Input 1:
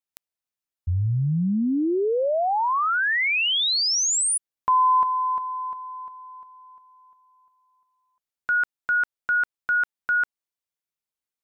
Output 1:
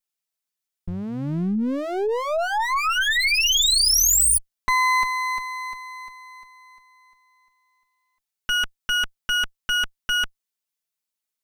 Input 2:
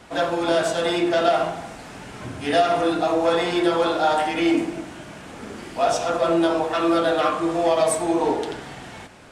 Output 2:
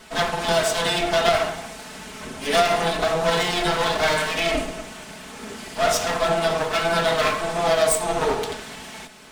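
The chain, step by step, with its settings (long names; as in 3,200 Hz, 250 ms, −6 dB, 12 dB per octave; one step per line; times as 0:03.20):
lower of the sound and its delayed copy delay 4.6 ms
high-shelf EQ 2,200 Hz +7.5 dB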